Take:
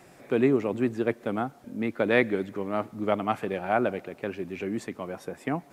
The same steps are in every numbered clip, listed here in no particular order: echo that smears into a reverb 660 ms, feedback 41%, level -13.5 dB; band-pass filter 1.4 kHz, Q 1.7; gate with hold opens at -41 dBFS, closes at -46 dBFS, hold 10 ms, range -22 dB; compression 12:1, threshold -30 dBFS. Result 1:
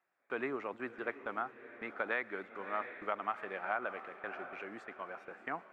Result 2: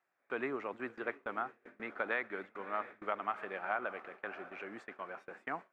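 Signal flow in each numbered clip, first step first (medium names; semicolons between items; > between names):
band-pass filter > gate with hold > echo that smears into a reverb > compression; band-pass filter > compression > echo that smears into a reverb > gate with hold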